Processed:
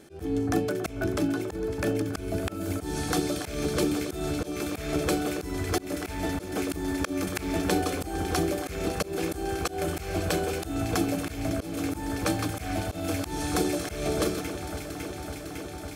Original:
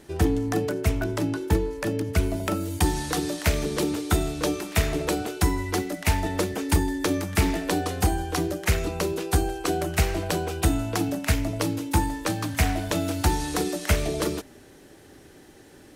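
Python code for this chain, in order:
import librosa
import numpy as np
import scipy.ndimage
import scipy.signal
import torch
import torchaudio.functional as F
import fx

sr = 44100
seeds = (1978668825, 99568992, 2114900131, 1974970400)

y = fx.notch_comb(x, sr, f0_hz=950.0)
y = fx.echo_alternate(y, sr, ms=277, hz=1500.0, feedback_pct=90, wet_db=-11.5)
y = fx.auto_swell(y, sr, attack_ms=177.0)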